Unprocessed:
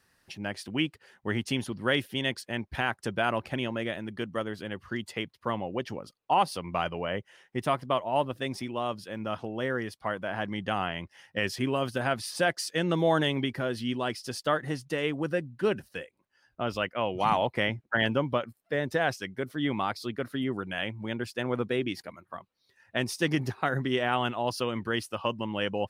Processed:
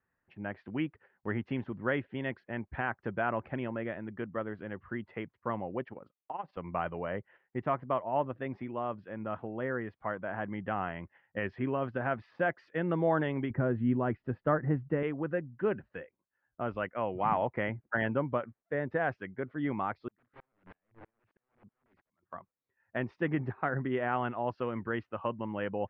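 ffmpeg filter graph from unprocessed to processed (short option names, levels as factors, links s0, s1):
-filter_complex "[0:a]asettb=1/sr,asplit=3[s0][s1][s2];[s0]atrim=end=5.834[s3];[s1]atrim=start=5.83:end=6.57,asetpts=PTS-STARTPTS,afade=t=in:d=0.004:c=qsin,afade=t=out:st=0.736:d=0.004:c=qsin,lowshelf=f=130:g=-7.5,acompressor=threshold=0.02:ratio=2:attack=3.2:release=140:knee=1:detection=peak,tremolo=f=21:d=0.75[s4];[s2]atrim=start=6.566[s5];[s3][s4]acrossfade=d=0.004:c1=hsin:c2=qsin[s6];[s6][s5]acrossfade=d=0.004:c1=qsin:c2=hsin,asettb=1/sr,asplit=3[s7][s8][s9];[s7]atrim=end=13.504[s10];[s8]atrim=start=13.5:end=15.03,asetpts=PTS-STARTPTS,afade=t=in:d=0.004:c=qsin,afade=t=out:st=1.526:d=0.004:c=qsin,lowpass=2200,lowshelf=f=310:g=11[s11];[s9]atrim=start=15.026[s12];[s10][s11]acrossfade=d=0.004:c1=hsin:c2=qsin[s13];[s13][s12]acrossfade=d=0.004:c1=qsin:c2=hsin,asettb=1/sr,asplit=3[s14][s15][s16];[s14]atrim=end=20.084[s17];[s15]atrim=start=20.08:end=22.23,asetpts=PTS-STARTPTS,afade=t=in:d=0.004:c=qsin,afade=t=out:st=2.146:d=0.004:c=qsin,acompressor=threshold=0.0158:ratio=4:attack=3.2:release=140:knee=1:detection=peak,aeval=exprs='(mod(84.1*val(0)+1,2)-1)/84.1':c=same,aeval=exprs='val(0)*pow(10,-37*if(lt(mod(-3.1*n/s,1),2*abs(-3.1)/1000),1-mod(-3.1*n/s,1)/(2*abs(-3.1)/1000),(mod(-3.1*n/s,1)-2*abs(-3.1)/1000)/(1-2*abs(-3.1)/1000))/20)':c=same[s18];[s16]atrim=start=22.226[s19];[s17][s18]acrossfade=d=0.004:c1=hsin:c2=qsin[s20];[s20][s19]acrossfade=d=0.004:c1=qsin:c2=hsin,lowpass=f=2000:w=0.5412,lowpass=f=2000:w=1.3066,deesser=0.9,agate=range=0.355:threshold=0.00224:ratio=16:detection=peak,volume=0.668"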